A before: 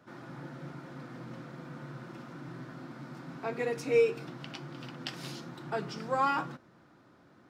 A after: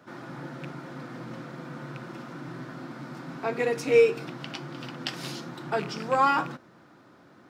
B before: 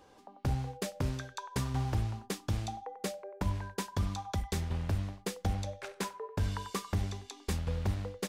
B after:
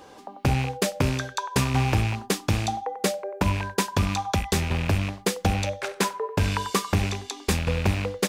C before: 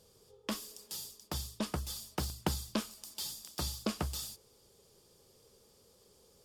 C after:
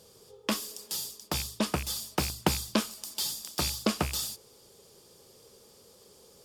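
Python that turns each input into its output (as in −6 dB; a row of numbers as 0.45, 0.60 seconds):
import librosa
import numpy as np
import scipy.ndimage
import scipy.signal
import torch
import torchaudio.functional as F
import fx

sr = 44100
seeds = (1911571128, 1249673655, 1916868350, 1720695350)

y = fx.rattle_buzz(x, sr, strikes_db=-38.0, level_db=-34.0)
y = fx.low_shelf(y, sr, hz=83.0, db=-10.5)
y = librosa.util.normalize(y) * 10.0 ** (-9 / 20.0)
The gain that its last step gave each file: +6.5, +12.5, +8.0 decibels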